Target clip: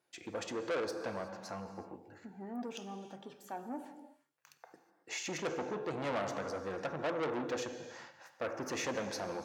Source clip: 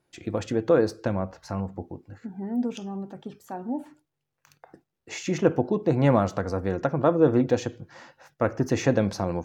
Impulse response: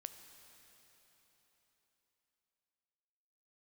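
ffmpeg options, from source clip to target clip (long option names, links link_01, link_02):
-filter_complex "[1:a]atrim=start_sample=2205,afade=type=out:start_time=0.43:duration=0.01,atrim=end_sample=19404[link_01];[0:a][link_01]afir=irnorm=-1:irlink=0,asoftclip=type=tanh:threshold=-29dB,highpass=frequency=630:poles=1,volume=2dB"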